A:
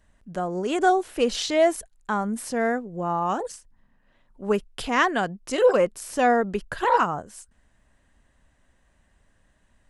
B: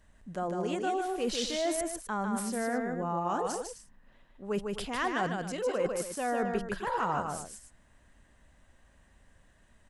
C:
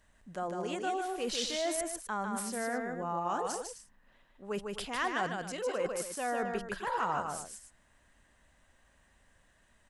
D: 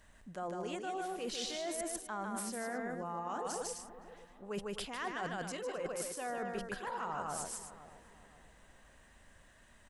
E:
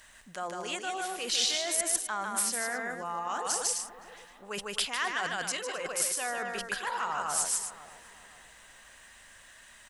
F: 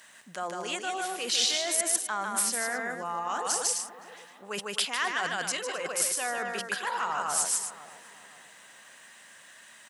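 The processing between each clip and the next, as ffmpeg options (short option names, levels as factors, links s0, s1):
-af "areverse,acompressor=threshold=0.0316:ratio=5,areverse,aecho=1:1:151.6|259.5:0.631|0.251"
-af "lowshelf=f=470:g=-7"
-filter_complex "[0:a]areverse,acompressor=threshold=0.00794:ratio=5,areverse,asplit=2[s0][s1];[s1]adelay=520,lowpass=f=880:p=1,volume=0.237,asplit=2[s2][s3];[s3]adelay=520,lowpass=f=880:p=1,volume=0.46,asplit=2[s4][s5];[s5]adelay=520,lowpass=f=880:p=1,volume=0.46,asplit=2[s6][s7];[s7]adelay=520,lowpass=f=880:p=1,volume=0.46,asplit=2[s8][s9];[s9]adelay=520,lowpass=f=880:p=1,volume=0.46[s10];[s0][s2][s4][s6][s8][s10]amix=inputs=6:normalize=0,volume=1.68"
-af "tiltshelf=f=820:g=-9,volume=1.78"
-af "highpass=f=140:w=0.5412,highpass=f=140:w=1.3066,volume=1.26"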